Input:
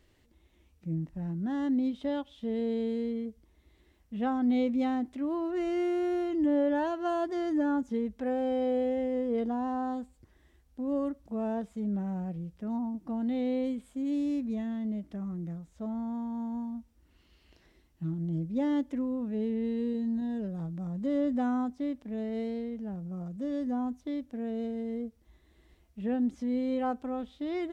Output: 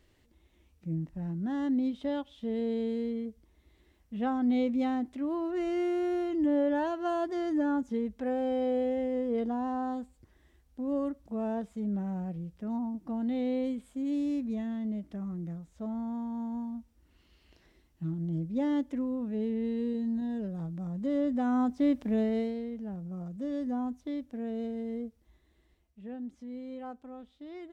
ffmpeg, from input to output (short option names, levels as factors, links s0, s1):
-af "volume=2.82,afade=t=in:st=21.44:d=0.6:silence=0.334965,afade=t=out:st=22.04:d=0.5:silence=0.316228,afade=t=out:st=24.98:d=1.02:silence=0.316228"